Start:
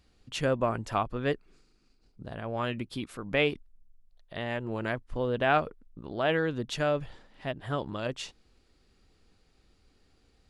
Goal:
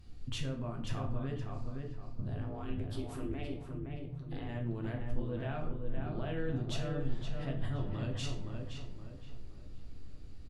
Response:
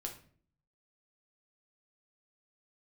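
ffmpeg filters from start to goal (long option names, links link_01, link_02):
-filter_complex "[0:a]bass=frequency=250:gain=12,treble=frequency=4000:gain=1,acompressor=threshold=-33dB:ratio=6,alimiter=level_in=8dB:limit=-24dB:level=0:latency=1,volume=-8dB,asettb=1/sr,asplit=3[link_01][link_02][link_03];[link_01]atrim=end=2.404[link_04];[link_02]atrim=start=2.4:end=4.49,asetpts=PTS-STARTPTS,afade=type=in:duration=0.004:curve=qsin,afade=type=out:start_time=2.086:duration=0.004:curve=qsin,aeval=exprs='val(0)*sin(2*PI*140*n/s)':channel_layout=same[link_05];[link_03]atrim=start=4.486[link_06];[link_04][link_05]acrossfade=duration=0.004:curve1=hsin:curve2=qsin[link_07];[link_07][link_06]acrossfade=duration=0.004:curve1=qsin:curve2=hsin,asplit=2[link_08][link_09];[link_09]adelay=518,lowpass=frequency=2500:poles=1,volume=-4dB,asplit=2[link_10][link_11];[link_11]adelay=518,lowpass=frequency=2500:poles=1,volume=0.39,asplit=2[link_12][link_13];[link_13]adelay=518,lowpass=frequency=2500:poles=1,volume=0.39,asplit=2[link_14][link_15];[link_15]adelay=518,lowpass=frequency=2500:poles=1,volume=0.39,asplit=2[link_16][link_17];[link_17]adelay=518,lowpass=frequency=2500:poles=1,volume=0.39[link_18];[link_08][link_10][link_12][link_14][link_16][link_18]amix=inputs=6:normalize=0[link_19];[1:a]atrim=start_sample=2205,asetrate=37926,aresample=44100[link_20];[link_19][link_20]afir=irnorm=-1:irlink=0,volume=2dB"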